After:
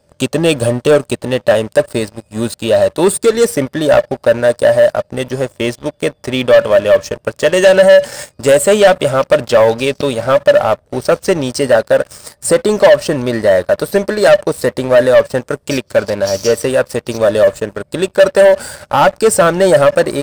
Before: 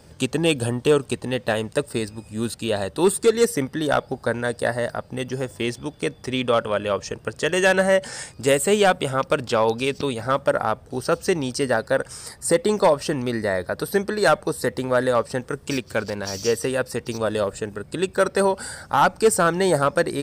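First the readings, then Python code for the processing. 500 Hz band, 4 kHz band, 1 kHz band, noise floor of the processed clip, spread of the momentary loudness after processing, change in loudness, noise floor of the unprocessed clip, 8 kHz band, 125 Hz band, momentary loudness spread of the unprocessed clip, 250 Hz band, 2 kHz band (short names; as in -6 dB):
+11.5 dB, +7.5 dB, +6.0 dB, -56 dBFS, 10 LU, +10.0 dB, -48 dBFS, +7.0 dB, +7.0 dB, 10 LU, +7.0 dB, +7.0 dB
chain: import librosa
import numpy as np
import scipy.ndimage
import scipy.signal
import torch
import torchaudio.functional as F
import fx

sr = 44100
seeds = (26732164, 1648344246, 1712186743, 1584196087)

y = fx.peak_eq(x, sr, hz=590.0, db=14.5, octaves=0.21)
y = fx.leveller(y, sr, passes=3)
y = y * librosa.db_to_amplitude(-3.5)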